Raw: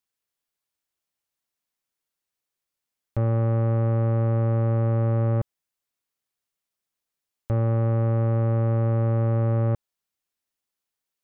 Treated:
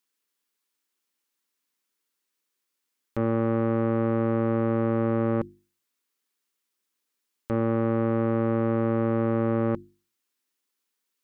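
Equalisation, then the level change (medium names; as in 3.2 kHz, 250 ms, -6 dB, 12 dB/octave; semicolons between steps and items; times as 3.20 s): resonant low shelf 170 Hz -11.5 dB, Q 1.5; peaking EQ 670 Hz -13.5 dB 0.36 oct; hum notches 50/100/150/200/250/300/350 Hz; +5.0 dB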